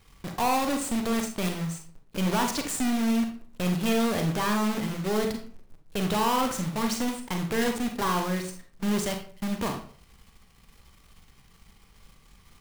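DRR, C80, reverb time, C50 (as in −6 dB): 4.0 dB, 12.0 dB, 0.45 s, 7.5 dB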